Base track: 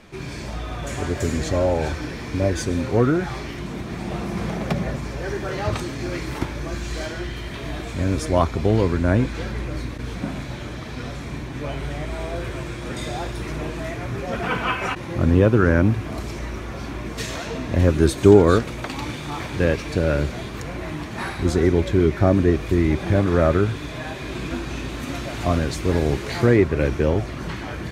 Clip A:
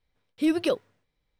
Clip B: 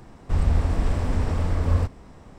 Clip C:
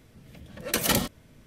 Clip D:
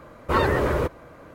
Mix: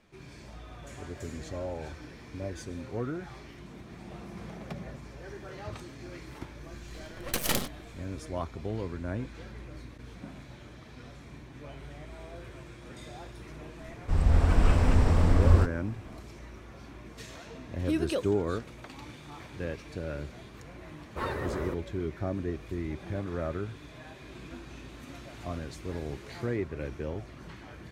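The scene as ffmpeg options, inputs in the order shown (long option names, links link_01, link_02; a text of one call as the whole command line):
ffmpeg -i bed.wav -i cue0.wav -i cue1.wav -i cue2.wav -i cue3.wav -filter_complex "[0:a]volume=-16dB[link_01];[3:a]aeval=exprs='max(val(0),0)':channel_layout=same[link_02];[2:a]dynaudnorm=framelen=160:gausssize=7:maxgain=8.5dB[link_03];[link_02]atrim=end=1.46,asetpts=PTS-STARTPTS,volume=-1dB,afade=type=in:duration=0.004:curve=hsin,afade=type=out:start_time=1.456:duration=0.004:curve=hsin,adelay=6600[link_04];[link_03]atrim=end=2.38,asetpts=PTS-STARTPTS,volume=-5.5dB,afade=type=in:duration=0.004:curve=hsin,afade=type=out:start_time=2.376:duration=0.004:curve=hsin,adelay=13790[link_05];[1:a]atrim=end=1.39,asetpts=PTS-STARTPTS,volume=-6dB,afade=type=in:duration=0.004:curve=hsin,afade=type=out:start_time=1.386:duration=0.004:curve=hsin,adelay=17460[link_06];[4:a]atrim=end=1.34,asetpts=PTS-STARTPTS,volume=-13dB,afade=type=in:duration=0.004:curve=hsin,afade=type=out:start_time=1.336:duration=0.004:curve=hsin,adelay=20870[link_07];[link_01][link_04][link_05][link_06][link_07]amix=inputs=5:normalize=0" out.wav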